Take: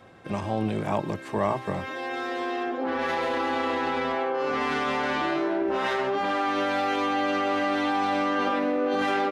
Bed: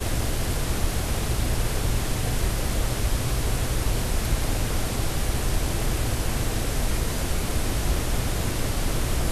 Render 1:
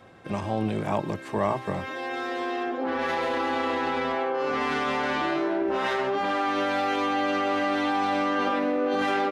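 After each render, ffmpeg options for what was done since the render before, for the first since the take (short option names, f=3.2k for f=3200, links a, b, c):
-af anull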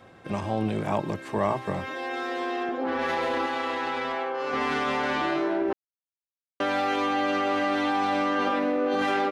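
-filter_complex "[0:a]asettb=1/sr,asplit=3[a][b][c];[a]atrim=end=1.944[d];[b]atrim=start=1.94:end=2.69,asetpts=PTS-STARTPTS,afade=t=in:d=0.004:c=qsin,afade=t=out:st=0.746:d=0.004:c=qsin,highpass=170[e];[c]atrim=start=2.686[f];[d][e]acrossfade=d=0.004:c1=hsin:c2=qsin[g];[g][f]acrossfade=d=0.004:c1=qsin:c2=hsin,asettb=1/sr,asplit=3[h][i][j];[h]atrim=end=3.464[k];[i]atrim=start=3.46:end=4.53,asetpts=PTS-STARTPTS,afade=t=in:d=0.004:c=qsin,afade=t=out:st=1.066:d=0.004:c=qsin,lowshelf=f=490:g=-7.5[l];[j]atrim=start=4.526[m];[k][l]acrossfade=d=0.004:c1=hsin:c2=qsin[n];[n][m]acrossfade=d=0.004:c1=qsin:c2=hsin,asplit=3[o][p][q];[o]atrim=end=5.73,asetpts=PTS-STARTPTS,afade=t=out:st=5.726:d=0.004:c=hsin[r];[p]atrim=start=5.73:end=6.6,asetpts=PTS-STARTPTS,volume=0[s];[q]atrim=start=6.6,asetpts=PTS-STARTPTS,afade=t=in:d=0.004:c=hsin[t];[r][s][t]concat=n=3:v=0:a=1"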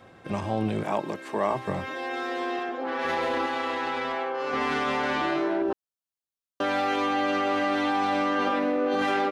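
-filter_complex "[0:a]asettb=1/sr,asplit=3[a][b][c];[a]atrim=end=0.834[d];[b]atrim=start=0.83:end=1.53,asetpts=PTS-STARTPTS,afade=t=in:d=0.004:c=qsin,afade=t=out:st=0.696:d=0.004:c=qsin,highpass=240[e];[c]atrim=start=1.526[f];[d][e]acrossfade=d=0.004:c1=hsin:c2=qsin[g];[g][f]acrossfade=d=0.004:c1=qsin:c2=hsin,asettb=1/sr,asplit=3[h][i][j];[h]atrim=end=2.594[k];[i]atrim=start=2.59:end=3.05,asetpts=PTS-STARTPTS,afade=t=in:d=0.004:c=qsin,afade=t=out:st=0.456:d=0.004:c=qsin,highpass=f=420:p=1[l];[j]atrim=start=3.046[m];[k][l]acrossfade=d=0.004:c1=hsin:c2=qsin[n];[n][m]acrossfade=d=0.004:c1=qsin:c2=hsin,asettb=1/sr,asplit=3[o][p][q];[o]atrim=end=5.624[r];[p]atrim=start=5.62:end=6.64,asetpts=PTS-STARTPTS,afade=t=in:d=0.004:c=qsin,afade=t=out:st=1.016:d=0.004:c=qsin,equalizer=f=2.1k:w=4.2:g=-12.5[s];[q]atrim=start=6.636[t];[r][s]acrossfade=d=0.004:c1=hsin:c2=qsin[u];[u][t]acrossfade=d=0.004:c1=qsin:c2=hsin"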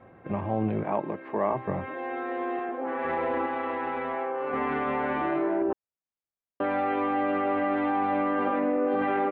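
-af "lowpass=f=2.1k:w=0.5412,lowpass=f=2.1k:w=1.3066,equalizer=f=1.5k:w=1.9:g=-4.5"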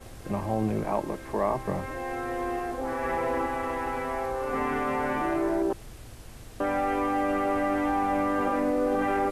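-filter_complex "[1:a]volume=-20dB[a];[0:a][a]amix=inputs=2:normalize=0"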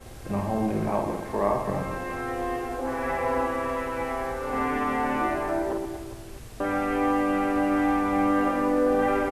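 -af "aecho=1:1:50|125|237.5|406.2|659.4:0.631|0.398|0.251|0.158|0.1"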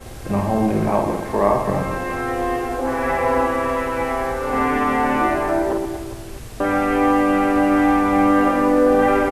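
-af "volume=7.5dB"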